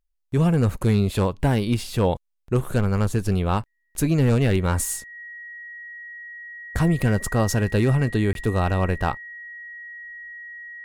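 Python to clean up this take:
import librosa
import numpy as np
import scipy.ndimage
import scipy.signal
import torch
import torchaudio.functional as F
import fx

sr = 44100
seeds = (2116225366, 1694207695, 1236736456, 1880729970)

y = fx.notch(x, sr, hz=1900.0, q=30.0)
y = fx.fix_interpolate(y, sr, at_s=(8.33,), length_ms=22.0)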